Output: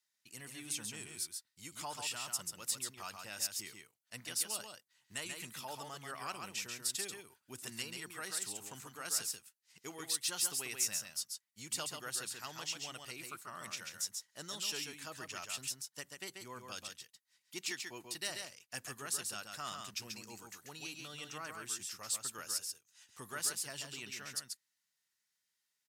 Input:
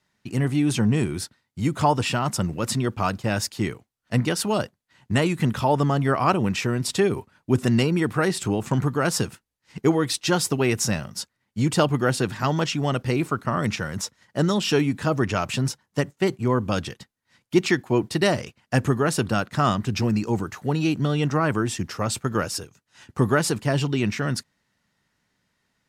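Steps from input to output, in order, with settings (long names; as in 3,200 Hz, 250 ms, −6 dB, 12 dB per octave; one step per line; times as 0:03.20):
first-order pre-emphasis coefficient 0.97
soft clipping −17 dBFS, distortion −22 dB
single-tap delay 137 ms −5 dB
level −5.5 dB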